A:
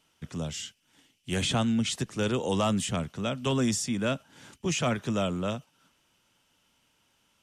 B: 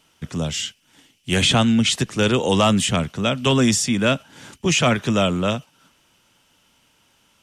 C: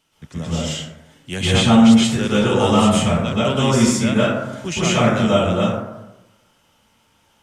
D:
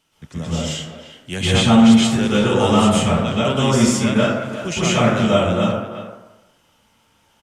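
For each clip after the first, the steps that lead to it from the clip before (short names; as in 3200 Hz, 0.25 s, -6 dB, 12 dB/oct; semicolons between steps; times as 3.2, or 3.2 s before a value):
dynamic EQ 2700 Hz, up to +4 dB, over -46 dBFS, Q 0.89; gain +9 dB
plate-style reverb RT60 1 s, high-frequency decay 0.35×, pre-delay 0.11 s, DRR -9 dB; gain -7.5 dB
speakerphone echo 0.35 s, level -11 dB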